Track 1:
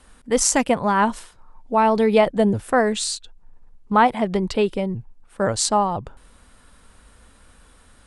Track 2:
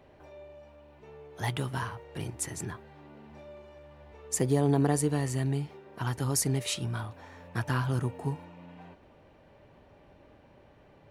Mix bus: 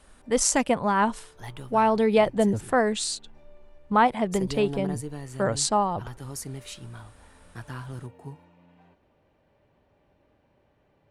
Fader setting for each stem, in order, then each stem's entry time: -4.0 dB, -8.5 dB; 0.00 s, 0.00 s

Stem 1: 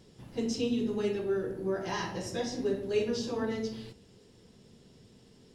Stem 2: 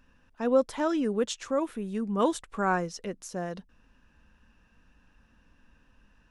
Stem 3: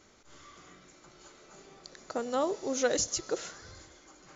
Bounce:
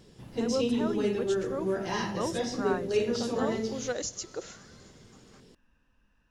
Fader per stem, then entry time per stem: +2.0 dB, -7.5 dB, -5.0 dB; 0.00 s, 0.00 s, 1.05 s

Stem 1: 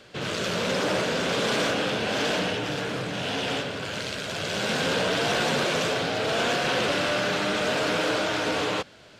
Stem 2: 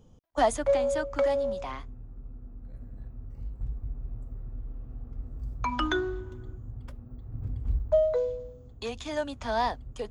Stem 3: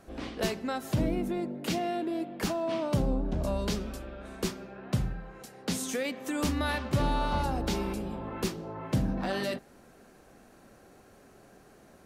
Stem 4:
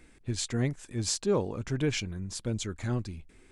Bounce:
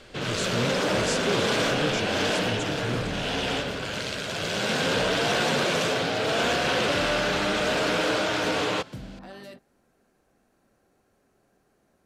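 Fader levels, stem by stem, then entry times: +0.5 dB, mute, -11.5 dB, -2.0 dB; 0.00 s, mute, 0.00 s, 0.00 s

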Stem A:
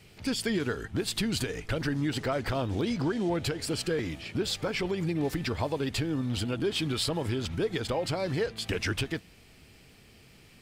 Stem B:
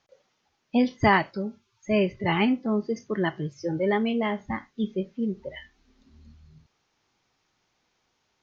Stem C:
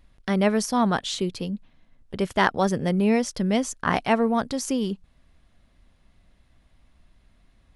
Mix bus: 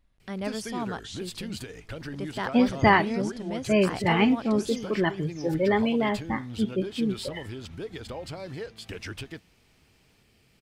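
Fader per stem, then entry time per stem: -7.5 dB, +1.0 dB, -11.5 dB; 0.20 s, 1.80 s, 0.00 s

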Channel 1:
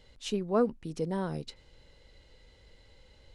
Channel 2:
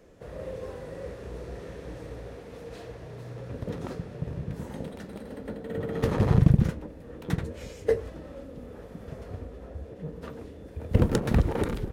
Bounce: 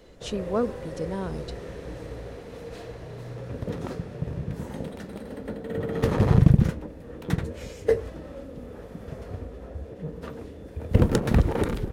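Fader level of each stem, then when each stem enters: +0.5 dB, +2.5 dB; 0.00 s, 0.00 s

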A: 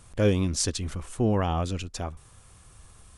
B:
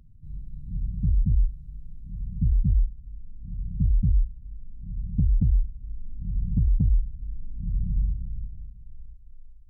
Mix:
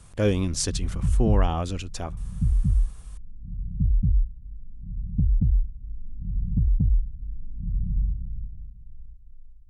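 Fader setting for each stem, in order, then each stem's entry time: 0.0 dB, 0.0 dB; 0.00 s, 0.00 s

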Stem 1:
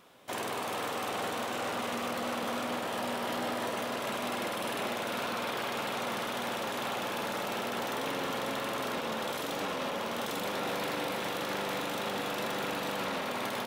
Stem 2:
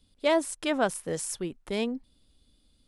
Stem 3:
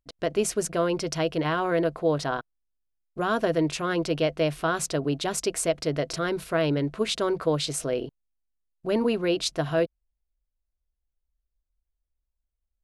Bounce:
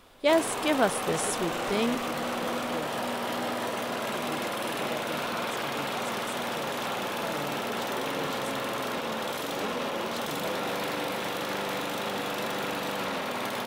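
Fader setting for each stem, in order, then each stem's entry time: +2.5 dB, +1.5 dB, -16.0 dB; 0.00 s, 0.00 s, 0.70 s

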